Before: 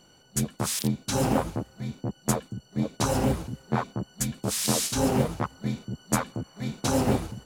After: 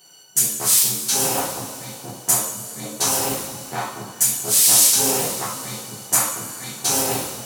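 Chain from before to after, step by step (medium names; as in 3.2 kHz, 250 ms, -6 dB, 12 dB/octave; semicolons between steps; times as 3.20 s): RIAA curve recording; two-slope reverb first 0.56 s, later 3.7 s, from -15 dB, DRR -6 dB; trim -3 dB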